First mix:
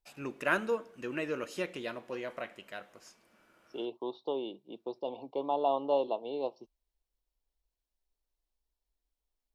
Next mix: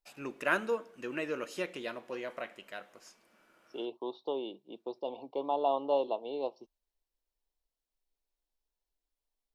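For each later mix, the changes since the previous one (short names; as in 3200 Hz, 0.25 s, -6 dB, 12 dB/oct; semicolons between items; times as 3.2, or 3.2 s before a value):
master: add bell 63 Hz -10.5 dB 2.1 oct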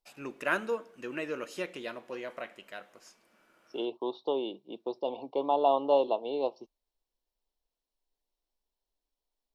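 second voice +4.5 dB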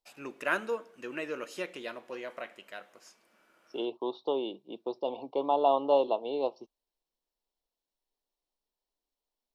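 first voice: add low shelf 160 Hz -8 dB; second voice: add bell 1300 Hz +3 dB 0.36 oct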